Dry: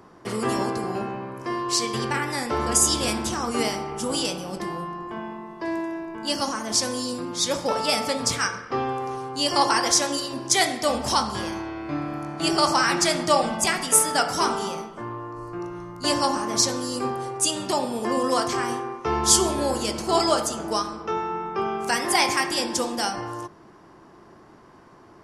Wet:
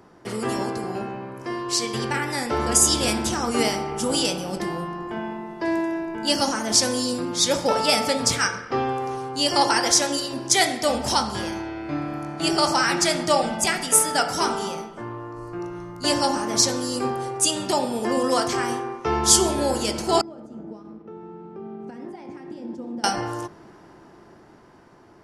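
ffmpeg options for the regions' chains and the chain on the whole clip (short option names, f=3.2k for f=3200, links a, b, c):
-filter_complex "[0:a]asettb=1/sr,asplit=3[a][b][c];[a]atrim=end=20.214[d];[b]atrim=start=20.21:end=23.04,asetpts=PTS-STARTPTS,afade=t=in:d=0.004:c=qsin,afade=t=out:st=2.826:d=0.004:c=qsin,acompressor=threshold=-27dB:ratio=4:attack=3.2:release=140:knee=1:detection=peak,aeval=exprs='sgn(val(0))*max(abs(val(0))-0.00668,0)':c=same,bandpass=f=220:t=q:w=1.6[e];[c]atrim=start=23.036[f];[d][e]acrossfade=d=0.004:c1=hsin:c2=qsin[g];[g][f]acrossfade=d=0.004:c1=qsin:c2=hsin,bandreject=f=1.1k:w=8,dynaudnorm=f=540:g=9:m=11.5dB,volume=-1dB"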